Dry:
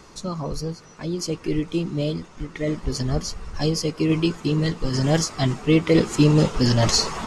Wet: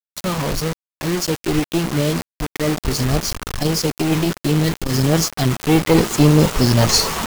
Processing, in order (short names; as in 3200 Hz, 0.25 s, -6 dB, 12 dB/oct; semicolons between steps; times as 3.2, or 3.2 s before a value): companded quantiser 8-bit; one-sided clip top -22.5 dBFS; bit-crush 5-bit; 3.33–5.59 core saturation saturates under 160 Hz; gain +6 dB